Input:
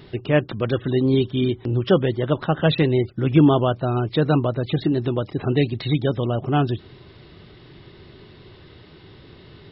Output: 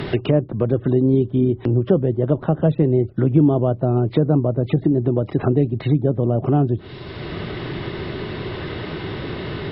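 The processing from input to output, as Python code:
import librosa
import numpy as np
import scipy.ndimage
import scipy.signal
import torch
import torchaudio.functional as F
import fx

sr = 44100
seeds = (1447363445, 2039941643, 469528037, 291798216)

y = fx.peak_eq(x, sr, hz=640.0, db=2.5, octaves=0.26)
y = fx.env_lowpass_down(y, sr, base_hz=550.0, full_db=-18.5)
y = fx.high_shelf(y, sr, hz=2800.0, db=8.5)
y = fx.band_squash(y, sr, depth_pct=70)
y = y * 10.0 ** (3.0 / 20.0)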